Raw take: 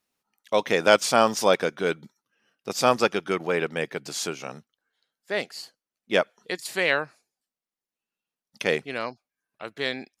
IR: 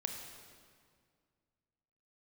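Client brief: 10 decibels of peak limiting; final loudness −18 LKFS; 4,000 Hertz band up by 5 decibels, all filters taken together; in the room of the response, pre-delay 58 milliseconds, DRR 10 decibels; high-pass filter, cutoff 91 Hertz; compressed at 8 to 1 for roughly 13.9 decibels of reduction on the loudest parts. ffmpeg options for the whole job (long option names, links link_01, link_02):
-filter_complex "[0:a]highpass=91,equalizer=frequency=4000:width_type=o:gain=6.5,acompressor=threshold=-26dB:ratio=8,alimiter=limit=-19.5dB:level=0:latency=1,asplit=2[link_01][link_02];[1:a]atrim=start_sample=2205,adelay=58[link_03];[link_02][link_03]afir=irnorm=-1:irlink=0,volume=-10.5dB[link_04];[link_01][link_04]amix=inputs=2:normalize=0,volume=15.5dB"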